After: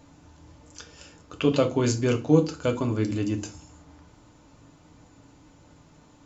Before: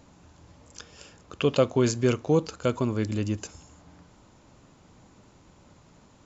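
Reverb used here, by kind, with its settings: FDN reverb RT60 0.3 s, low-frequency decay 1.6×, high-frequency decay 0.95×, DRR 4 dB; trim -1 dB

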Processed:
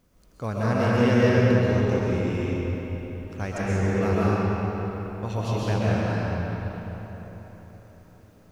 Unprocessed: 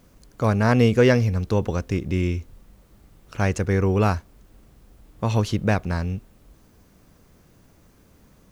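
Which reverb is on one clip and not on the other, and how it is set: algorithmic reverb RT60 4.2 s, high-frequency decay 0.7×, pre-delay 90 ms, DRR -8 dB; trim -10 dB

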